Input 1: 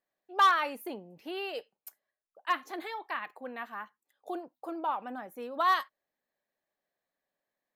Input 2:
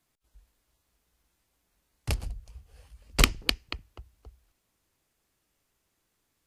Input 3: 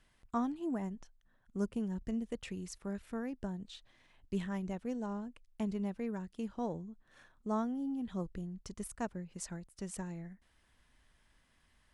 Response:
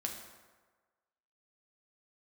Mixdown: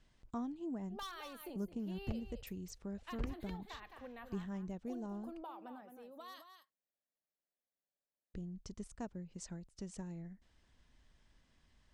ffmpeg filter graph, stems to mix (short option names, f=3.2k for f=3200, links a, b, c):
-filter_complex "[0:a]acrossover=split=150|3000[a][b][c];[b]acompressor=threshold=-35dB:ratio=3[d];[a][d][c]amix=inputs=3:normalize=0,adelay=600,volume=-4.5dB,afade=t=out:st=5.68:d=0.21:silence=0.446684,asplit=2[e][f];[f]volume=-9.5dB[g];[1:a]lowpass=1.5k,aeval=exprs='val(0)*pow(10,-25*if(lt(mod(-3.3*n/s,1),2*abs(-3.3)/1000),1-mod(-3.3*n/s,1)/(2*abs(-3.3)/1000),(mod(-3.3*n/s,1)-2*abs(-3.3)/1000)/(1-2*abs(-3.3)/1000))/20)':c=same,volume=0.5dB[h];[2:a]lowpass=f=7.2k:w=0.5412,lowpass=f=7.2k:w=1.3066,volume=2dB,asplit=3[i][j][k];[i]atrim=end=5.43,asetpts=PTS-STARTPTS,afade=t=out:st=5.426:d=0.004:c=hsin[l];[j]atrim=start=5.43:end=8.34,asetpts=PTS-STARTPTS,volume=0[m];[k]atrim=start=8.34,asetpts=PTS-STARTPTS,afade=t=in:d=0.004:c=hsin[n];[l][m][n]concat=n=3:v=0:a=1[o];[g]aecho=0:1:215:1[p];[e][h][o][p]amix=inputs=4:normalize=0,equalizer=f=1.6k:w=0.51:g=-7,acompressor=threshold=-50dB:ratio=1.5"